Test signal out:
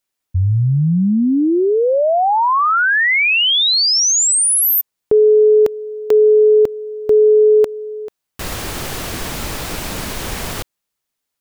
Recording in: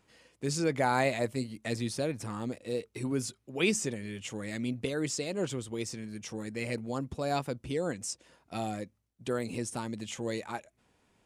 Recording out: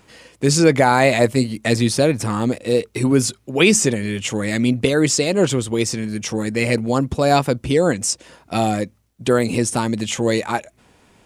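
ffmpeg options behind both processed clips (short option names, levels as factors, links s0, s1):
-af "alimiter=level_in=7.08:limit=0.891:release=50:level=0:latency=1,volume=0.891"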